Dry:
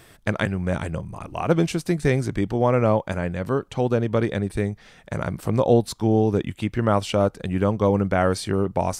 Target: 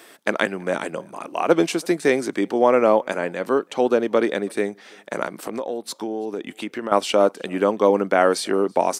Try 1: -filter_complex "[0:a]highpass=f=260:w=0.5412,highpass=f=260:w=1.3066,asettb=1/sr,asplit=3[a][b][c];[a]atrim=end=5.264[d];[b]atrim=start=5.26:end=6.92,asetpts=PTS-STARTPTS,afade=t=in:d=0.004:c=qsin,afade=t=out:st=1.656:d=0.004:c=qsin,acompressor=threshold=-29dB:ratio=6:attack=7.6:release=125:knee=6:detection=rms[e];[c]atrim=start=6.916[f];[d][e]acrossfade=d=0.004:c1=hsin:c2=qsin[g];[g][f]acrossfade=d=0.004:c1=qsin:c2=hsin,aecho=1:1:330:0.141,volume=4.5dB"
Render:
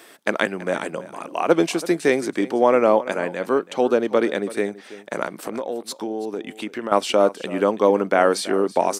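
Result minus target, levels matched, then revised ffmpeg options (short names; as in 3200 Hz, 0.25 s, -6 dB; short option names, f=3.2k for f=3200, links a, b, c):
echo-to-direct +11.5 dB
-filter_complex "[0:a]highpass=f=260:w=0.5412,highpass=f=260:w=1.3066,asettb=1/sr,asplit=3[a][b][c];[a]atrim=end=5.264[d];[b]atrim=start=5.26:end=6.92,asetpts=PTS-STARTPTS,afade=t=in:d=0.004:c=qsin,afade=t=out:st=1.656:d=0.004:c=qsin,acompressor=threshold=-29dB:ratio=6:attack=7.6:release=125:knee=6:detection=rms[e];[c]atrim=start=6.916[f];[d][e]acrossfade=d=0.004:c1=hsin:c2=qsin[g];[g][f]acrossfade=d=0.004:c1=qsin:c2=hsin,aecho=1:1:330:0.0376,volume=4.5dB"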